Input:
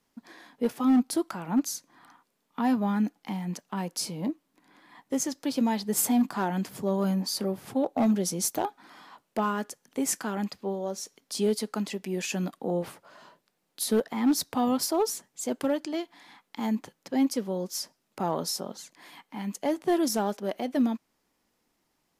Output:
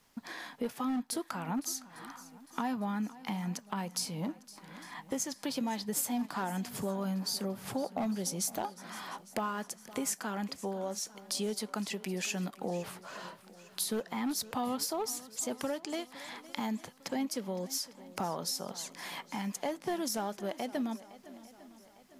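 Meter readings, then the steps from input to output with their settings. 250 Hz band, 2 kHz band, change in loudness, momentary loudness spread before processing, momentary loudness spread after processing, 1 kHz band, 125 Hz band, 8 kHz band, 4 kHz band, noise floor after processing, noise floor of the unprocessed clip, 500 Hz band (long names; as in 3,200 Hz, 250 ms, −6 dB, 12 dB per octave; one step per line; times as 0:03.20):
−9.0 dB, −2.0 dB, −7.0 dB, 10 LU, 11 LU, −5.0 dB, −5.5 dB, −3.5 dB, −2.5 dB, −58 dBFS, −76 dBFS, −7.5 dB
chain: parametric band 320 Hz −6.5 dB 1.5 octaves
downward compressor 3 to 1, threshold −44 dBFS, peak gain reduction 15.5 dB
on a send: feedback echo with a long and a short gap by turns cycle 853 ms, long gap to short 1.5 to 1, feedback 42%, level −18 dB
on the sum: level +8 dB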